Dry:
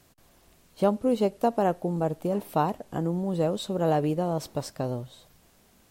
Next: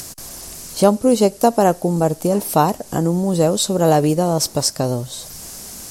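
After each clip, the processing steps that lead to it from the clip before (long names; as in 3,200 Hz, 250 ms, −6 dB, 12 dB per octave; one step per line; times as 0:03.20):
flat-topped bell 7,600 Hz +13 dB
in parallel at +0.5 dB: upward compression, threshold −26 dBFS
on the sum: level +3.5 dB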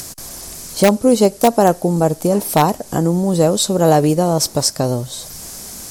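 notch filter 2,800 Hz, Q 24
in parallel at −6 dB: wrap-around overflow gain 3.5 dB
on the sum: level −1.5 dB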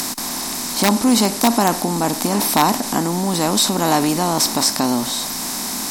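compressor on every frequency bin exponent 0.6
transient designer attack −1 dB, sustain +4 dB
graphic EQ with 10 bands 125 Hz −10 dB, 250 Hz +11 dB, 500 Hz −11 dB, 1,000 Hz +9 dB, 2,000 Hz +4 dB, 4,000 Hz +6 dB, 16,000 Hz +9 dB
level −7.5 dB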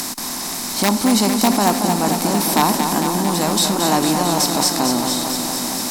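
feedback echo at a low word length 226 ms, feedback 80%, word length 7 bits, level −6.5 dB
level −1.5 dB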